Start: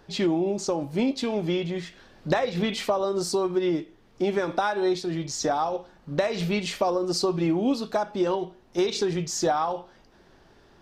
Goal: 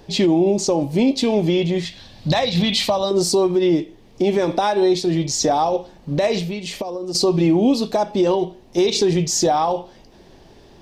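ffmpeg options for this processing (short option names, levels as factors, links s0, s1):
-filter_complex "[0:a]asettb=1/sr,asplit=3[s0][s1][s2];[s0]atrim=end=1.854[s3];[s1]atrim=start=1.85:end=3.11,asetpts=PTS-STARTPTS,afade=t=in:d=0.004:c=qsin,afade=t=out:st=1.256:d=0.004:c=qsin,equalizer=f=100:t=o:w=0.67:g=8,equalizer=f=400:t=o:w=0.67:g=-11,equalizer=f=4000:t=o:w=0.67:g=8[s4];[s2]atrim=start=3.106[s5];[s3][s4]acrossfade=d=0.004:c1=hsin:c2=qsin[s6];[s6][s5]acrossfade=d=0.004:c1=qsin:c2=hsin,asettb=1/sr,asplit=3[s7][s8][s9];[s7]atrim=end=6.384[s10];[s8]atrim=start=6.38:end=7.15,asetpts=PTS-STARTPTS,afade=t=in:d=0.004:c=qsin,afade=t=out:st=0.766:d=0.004:c=qsin,acompressor=threshold=0.0224:ratio=16[s11];[s9]atrim=start=7.146[s12];[s10][s11]acrossfade=d=0.004:c1=hsin:c2=qsin[s13];[s13][s12]acrossfade=d=0.004:c1=qsin:c2=hsin,equalizer=f=1400:w=2:g=-12,alimiter=level_in=7.94:limit=0.891:release=50:level=0:latency=1,volume=0.398"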